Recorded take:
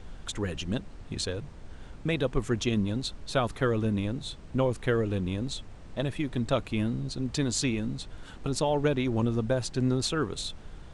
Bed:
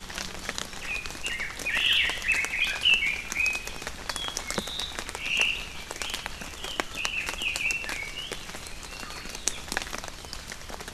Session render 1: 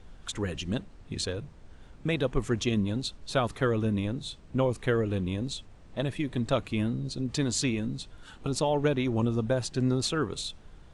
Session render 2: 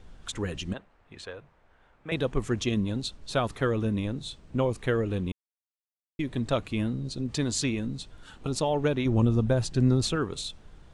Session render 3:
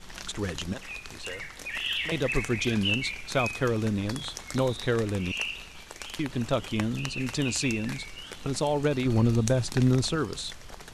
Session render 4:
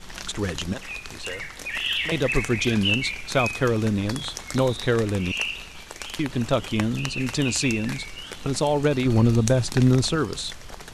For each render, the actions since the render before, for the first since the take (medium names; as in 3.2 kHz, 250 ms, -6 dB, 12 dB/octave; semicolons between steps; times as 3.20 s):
noise print and reduce 6 dB
0.73–2.12 s: three-band isolator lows -15 dB, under 540 Hz, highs -16 dB, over 2.6 kHz; 5.32–6.19 s: mute; 9.05–10.16 s: bass shelf 190 Hz +8.5 dB
add bed -7 dB
trim +4.5 dB